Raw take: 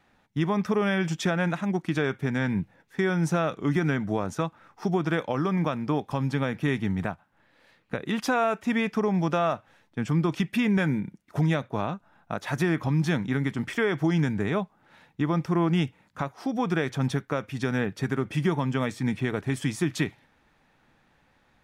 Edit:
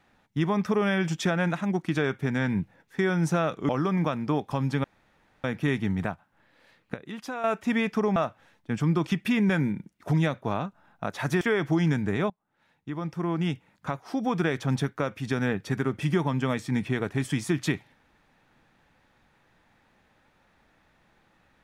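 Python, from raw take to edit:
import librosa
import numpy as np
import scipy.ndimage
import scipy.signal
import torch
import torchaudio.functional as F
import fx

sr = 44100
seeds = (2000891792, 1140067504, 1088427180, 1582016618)

y = fx.edit(x, sr, fx.cut(start_s=3.69, length_s=1.6),
    fx.insert_room_tone(at_s=6.44, length_s=0.6),
    fx.clip_gain(start_s=7.94, length_s=0.5, db=-10.0),
    fx.cut(start_s=9.16, length_s=0.28),
    fx.cut(start_s=12.69, length_s=1.04),
    fx.fade_in_from(start_s=14.62, length_s=1.78, floor_db=-24.0), tone=tone)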